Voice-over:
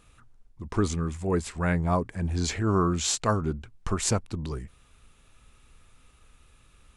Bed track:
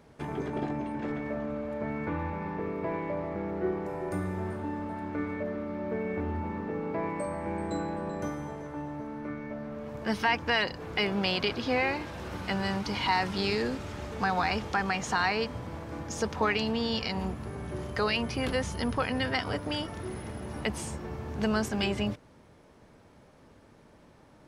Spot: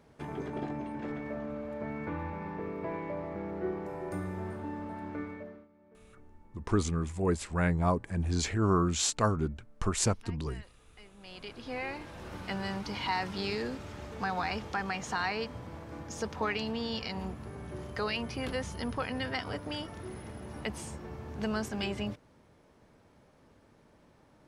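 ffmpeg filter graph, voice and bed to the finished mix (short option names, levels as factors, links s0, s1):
-filter_complex "[0:a]adelay=5950,volume=0.75[s0];[1:a]volume=8.41,afade=t=out:st=5.1:d=0.58:silence=0.0668344,afade=t=in:st=11.17:d=1.15:silence=0.0749894[s1];[s0][s1]amix=inputs=2:normalize=0"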